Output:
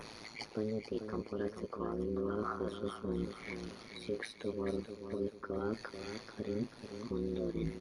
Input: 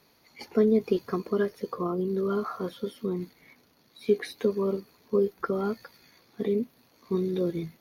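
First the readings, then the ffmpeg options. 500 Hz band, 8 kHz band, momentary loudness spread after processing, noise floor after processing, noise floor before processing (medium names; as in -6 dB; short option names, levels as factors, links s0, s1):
-11.5 dB, no reading, 8 LU, -55 dBFS, -64 dBFS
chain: -af "adynamicequalizer=threshold=0.001:dfrequency=4500:dqfactor=1.9:tfrequency=4500:tqfactor=1.9:attack=5:release=100:ratio=0.375:range=2:mode=cutabove:tftype=bell,areverse,acompressor=threshold=0.0112:ratio=12,areverse,alimiter=level_in=5.96:limit=0.0631:level=0:latency=1:release=336,volume=0.168,acompressor=mode=upward:threshold=0.00224:ratio=2.5,tremolo=f=110:d=0.919,aecho=1:1:438|876|1314|1752:0.376|0.15|0.0601|0.0241,aresample=22050,aresample=44100,volume=5.01"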